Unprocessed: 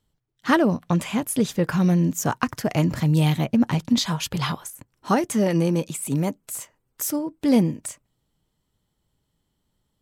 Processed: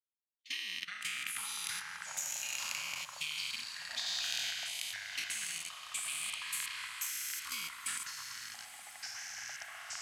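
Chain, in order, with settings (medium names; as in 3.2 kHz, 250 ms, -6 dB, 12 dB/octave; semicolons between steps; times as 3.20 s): spectral sustain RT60 3.00 s; elliptic high-pass 2.3 kHz, stop band 40 dB; gate -48 dBFS, range -22 dB; treble shelf 7.1 kHz -10.5 dB; level held to a coarse grid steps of 18 dB; transient shaper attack +6 dB, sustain +1 dB; 4.06–4.51 s: waveshaping leveller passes 1; ever faster or slower copies 123 ms, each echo -7 st, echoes 3, each echo -6 dB; echo that smears into a reverb 991 ms, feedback 57%, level -13.5 dB; trim -5.5 dB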